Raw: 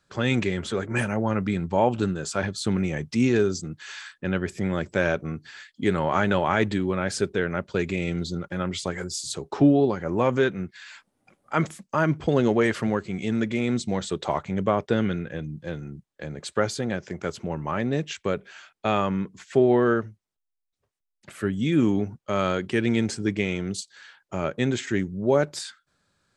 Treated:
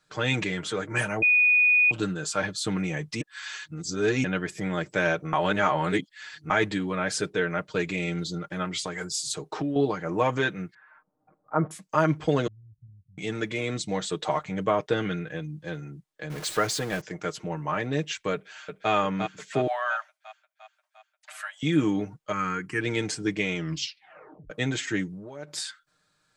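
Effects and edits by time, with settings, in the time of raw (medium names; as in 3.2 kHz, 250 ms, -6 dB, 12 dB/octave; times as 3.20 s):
1.22–1.91 s: bleep 2.47 kHz -20.5 dBFS
3.21–4.24 s: reverse
5.33–6.50 s: reverse
8.64–9.76 s: compression, threshold -24 dBFS
10.74–11.71 s: low-pass 1.2 kHz 24 dB/octave
12.47–13.18 s: inverse Chebyshev low-pass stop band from 510 Hz, stop band 80 dB
16.30–17.01 s: jump at every zero crossing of -33.5 dBFS
18.33–18.91 s: echo throw 350 ms, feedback 60%, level -5.5 dB
19.67–21.63 s: steep high-pass 610 Hz 96 dB/octave
22.32–22.81 s: static phaser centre 1.5 kHz, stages 4
23.55 s: tape stop 0.95 s
25.09–25.58 s: compression 20:1, threshold -31 dBFS
whole clip: bass shelf 470 Hz -6.5 dB; comb 6.5 ms, depth 66%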